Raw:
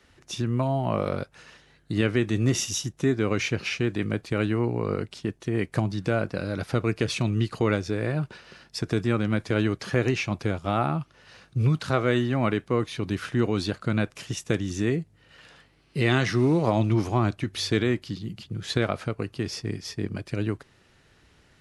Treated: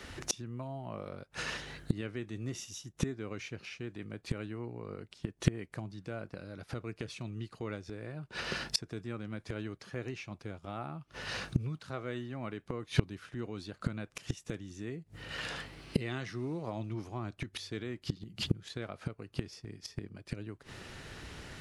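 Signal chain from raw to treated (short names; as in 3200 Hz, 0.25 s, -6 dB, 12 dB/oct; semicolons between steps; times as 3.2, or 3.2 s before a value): flipped gate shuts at -26 dBFS, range -28 dB; gain +12 dB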